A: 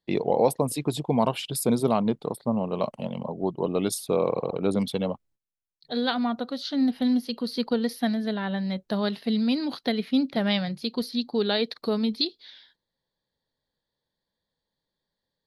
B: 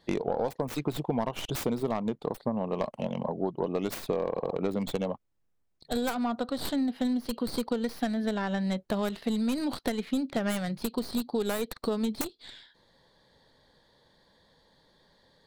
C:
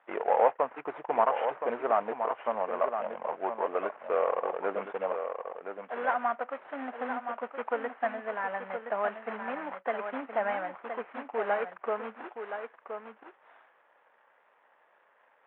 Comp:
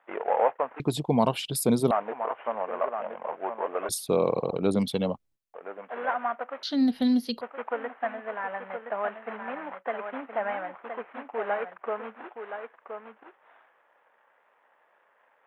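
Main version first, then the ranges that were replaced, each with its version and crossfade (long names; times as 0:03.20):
C
0:00.80–0:01.91: punch in from A
0:03.89–0:05.54: punch in from A
0:06.63–0:07.41: punch in from A
not used: B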